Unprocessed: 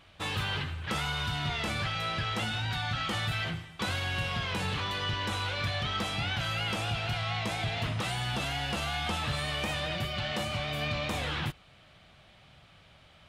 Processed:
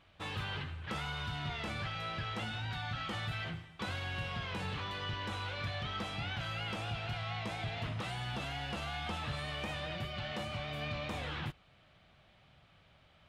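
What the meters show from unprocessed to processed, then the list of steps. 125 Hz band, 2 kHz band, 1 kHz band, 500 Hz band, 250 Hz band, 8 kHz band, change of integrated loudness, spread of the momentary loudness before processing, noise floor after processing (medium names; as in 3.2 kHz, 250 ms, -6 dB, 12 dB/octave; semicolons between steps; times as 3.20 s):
-6.0 dB, -7.0 dB, -6.5 dB, -6.0 dB, -6.0 dB, -12.0 dB, -7.0 dB, 2 LU, -65 dBFS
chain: treble shelf 5.5 kHz -9.5 dB; trim -6 dB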